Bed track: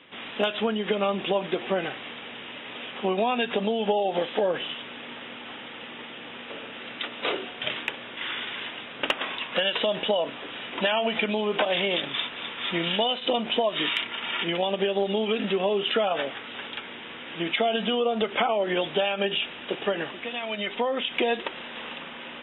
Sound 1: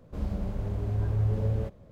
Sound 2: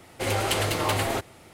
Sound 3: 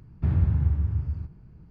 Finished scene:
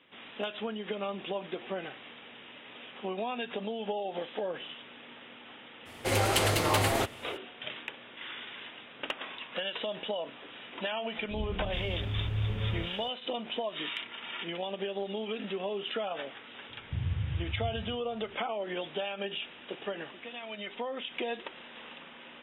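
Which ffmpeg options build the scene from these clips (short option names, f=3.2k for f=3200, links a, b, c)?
-filter_complex "[0:a]volume=-10dB[a];[1:a]acrossover=split=590[b][c];[c]adelay=420[d];[b][d]amix=inputs=2:normalize=0[e];[3:a]equalizer=f=110:t=o:w=0.72:g=10.5[f];[2:a]atrim=end=1.53,asetpts=PTS-STARTPTS,volume=-1dB,afade=t=in:d=0.02,afade=t=out:st=1.51:d=0.02,adelay=257985S[g];[e]atrim=end=1.91,asetpts=PTS-STARTPTS,volume=-5dB,afade=t=in:d=0.004:c=hsin,afade=t=out:st=1.906:d=0.004:c=hsin,adelay=11180[h];[f]atrim=end=1.7,asetpts=PTS-STARTPTS,volume=-16dB,afade=t=in:d=0.004:c=hsin,afade=t=out:st=1.696:d=0.004:c=hsin,adelay=16690[i];[a][g][h][i]amix=inputs=4:normalize=0"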